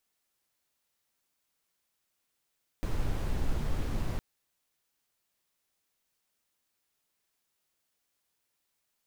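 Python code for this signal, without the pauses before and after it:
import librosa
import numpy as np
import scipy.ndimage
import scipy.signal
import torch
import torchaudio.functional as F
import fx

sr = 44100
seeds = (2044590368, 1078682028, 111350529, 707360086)

y = fx.noise_colour(sr, seeds[0], length_s=1.36, colour='brown', level_db=-29.0)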